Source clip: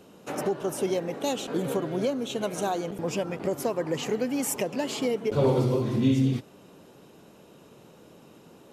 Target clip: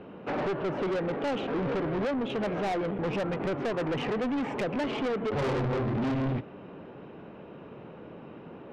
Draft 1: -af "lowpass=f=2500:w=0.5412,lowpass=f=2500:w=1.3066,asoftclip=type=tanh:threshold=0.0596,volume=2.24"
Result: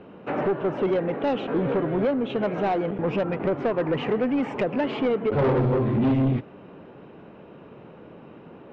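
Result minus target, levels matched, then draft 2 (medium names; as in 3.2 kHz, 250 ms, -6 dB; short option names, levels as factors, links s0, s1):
saturation: distortion -6 dB
-af "lowpass=f=2500:w=0.5412,lowpass=f=2500:w=1.3066,asoftclip=type=tanh:threshold=0.02,volume=2.24"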